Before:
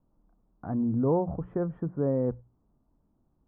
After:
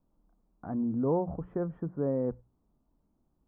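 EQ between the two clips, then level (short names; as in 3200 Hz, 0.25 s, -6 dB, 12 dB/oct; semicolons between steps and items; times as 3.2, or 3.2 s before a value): bell 110 Hz -7 dB 0.46 oct; -2.5 dB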